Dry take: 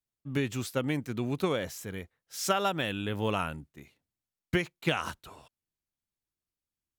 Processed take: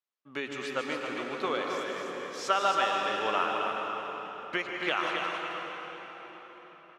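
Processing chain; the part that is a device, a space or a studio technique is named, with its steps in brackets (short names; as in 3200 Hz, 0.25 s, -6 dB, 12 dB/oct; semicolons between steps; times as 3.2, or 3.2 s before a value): station announcement (BPF 490–4600 Hz; bell 1200 Hz +5.5 dB 0.43 oct; loudspeakers at several distances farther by 52 m -10 dB, 93 m -6 dB; reverb RT60 5.0 s, pre-delay 0.106 s, DRR 1.5 dB)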